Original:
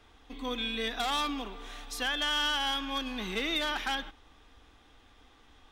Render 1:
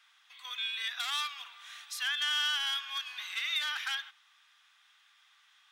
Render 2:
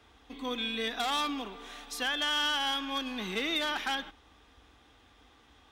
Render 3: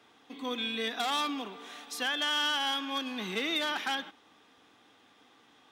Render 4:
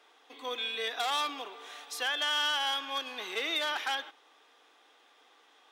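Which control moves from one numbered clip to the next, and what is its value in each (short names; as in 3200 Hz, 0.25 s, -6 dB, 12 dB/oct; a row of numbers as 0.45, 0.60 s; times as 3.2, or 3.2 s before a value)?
HPF, cutoff: 1300, 44, 140, 390 Hz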